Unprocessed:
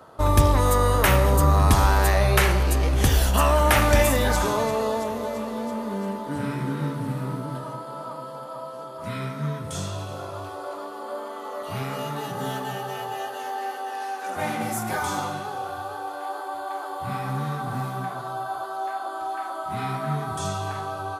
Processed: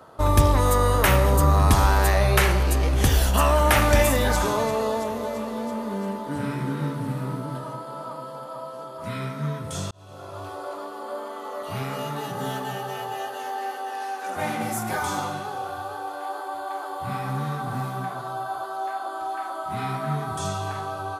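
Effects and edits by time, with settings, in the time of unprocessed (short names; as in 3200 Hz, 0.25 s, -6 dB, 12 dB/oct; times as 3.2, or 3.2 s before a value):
9.91–10.5 fade in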